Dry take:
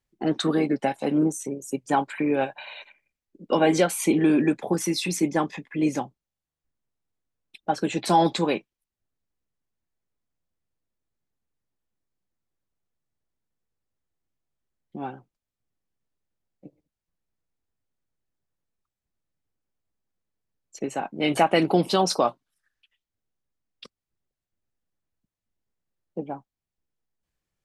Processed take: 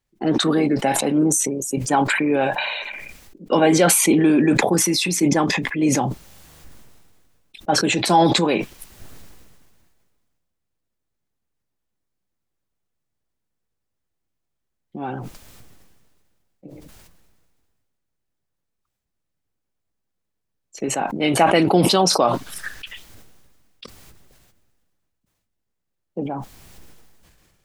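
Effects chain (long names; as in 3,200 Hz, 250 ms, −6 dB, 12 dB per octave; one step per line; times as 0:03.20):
level that may fall only so fast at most 29 dB per second
level +3.5 dB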